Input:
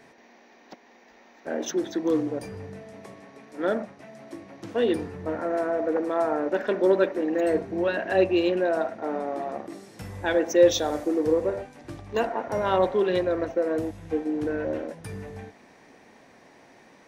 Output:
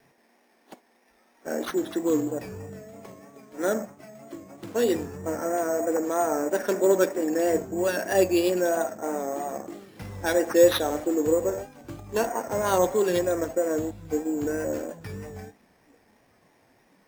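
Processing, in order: spectral noise reduction 9 dB; sample-and-hold 6×; vibrato 3.1 Hz 50 cents

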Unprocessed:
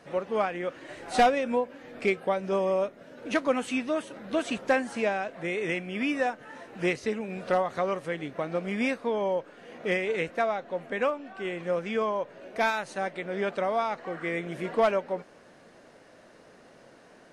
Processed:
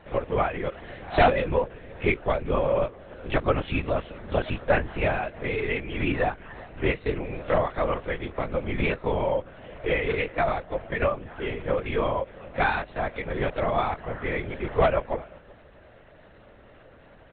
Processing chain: echo from a far wall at 65 m, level -24 dB; LPC vocoder at 8 kHz whisper; trim +2.5 dB

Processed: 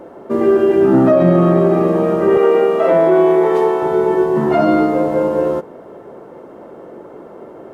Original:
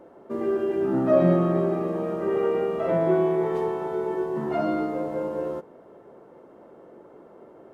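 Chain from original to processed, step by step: 2.37–3.83 s: high-pass 280 Hz 12 dB/octave; loudness maximiser +15.5 dB; trim -2.5 dB

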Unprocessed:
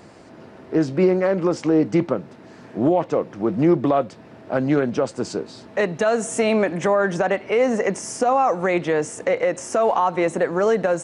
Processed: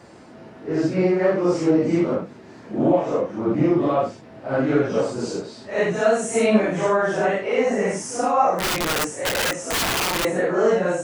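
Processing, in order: phase randomisation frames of 200 ms; 8.58–10.25 s: integer overflow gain 17.5 dB

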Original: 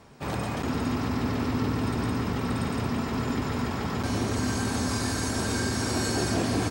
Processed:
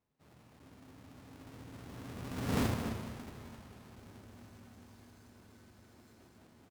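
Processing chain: square wave that keeps the level; Doppler pass-by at 2.60 s, 17 m/s, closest 1.1 m; echo from a far wall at 45 m, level -9 dB; trim -5 dB

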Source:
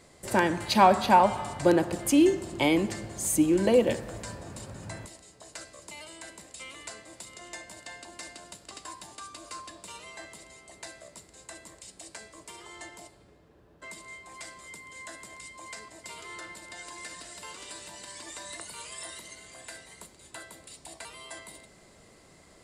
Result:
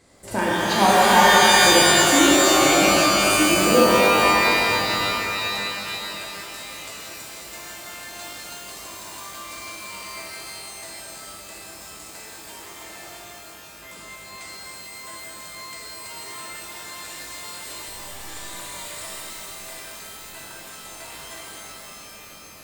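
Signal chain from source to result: 17.81–18.21 s: LPC vocoder at 8 kHz pitch kept; pitch-shifted reverb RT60 3.7 s, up +12 st, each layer -2 dB, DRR -6.5 dB; trim -2.5 dB

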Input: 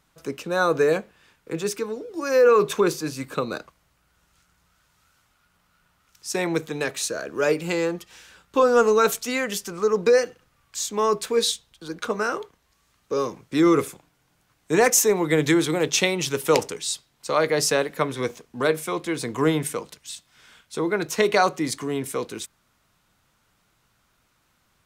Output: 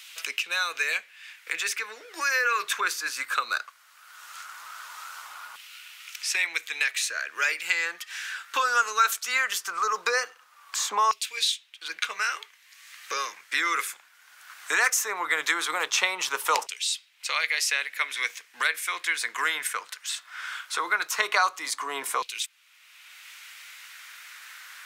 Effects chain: LFO high-pass saw down 0.18 Hz 980–2700 Hz; three bands compressed up and down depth 70%

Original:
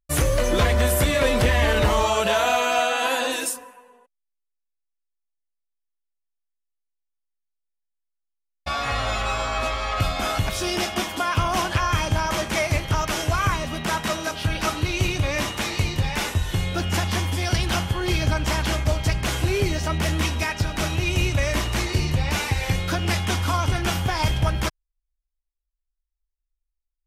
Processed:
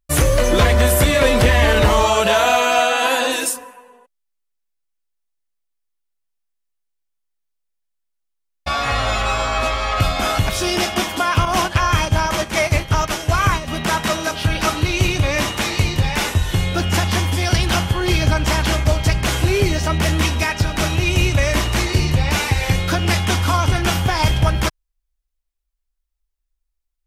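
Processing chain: 11.45–13.68 s: gate -24 dBFS, range -7 dB; trim +5.5 dB

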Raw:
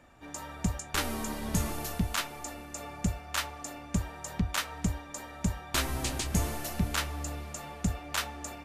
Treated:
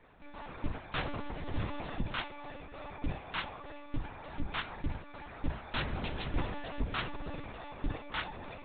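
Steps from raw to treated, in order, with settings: in parallel at -5 dB: saturation -28.5 dBFS, distortion -10 dB; on the sum: monotone LPC vocoder at 8 kHz 290 Hz; trim -6 dB

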